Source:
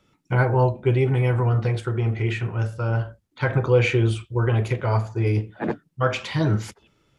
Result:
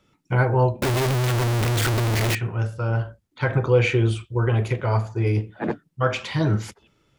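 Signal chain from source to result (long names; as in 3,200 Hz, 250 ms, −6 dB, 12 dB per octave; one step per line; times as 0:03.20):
0:00.82–0:02.35: sign of each sample alone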